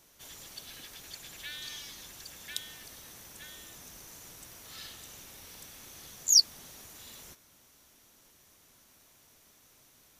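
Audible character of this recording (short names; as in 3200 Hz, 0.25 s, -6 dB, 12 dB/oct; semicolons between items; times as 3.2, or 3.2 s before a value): noise floor -62 dBFS; spectral tilt +0.5 dB/oct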